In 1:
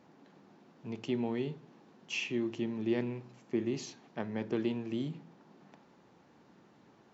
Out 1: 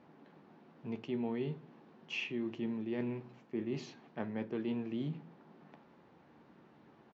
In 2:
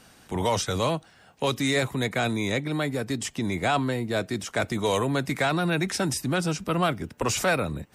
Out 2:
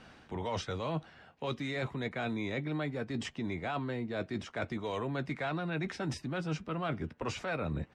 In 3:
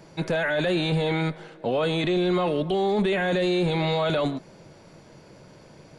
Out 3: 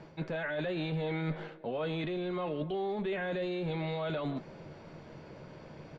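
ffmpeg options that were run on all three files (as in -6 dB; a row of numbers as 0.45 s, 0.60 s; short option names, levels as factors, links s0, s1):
-filter_complex "[0:a]lowpass=3300,areverse,acompressor=threshold=0.0224:ratio=6,areverse,asplit=2[s0][s1];[s1]adelay=13,volume=0.251[s2];[s0][s2]amix=inputs=2:normalize=0"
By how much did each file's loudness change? -3.5 LU, -10.0 LU, -10.5 LU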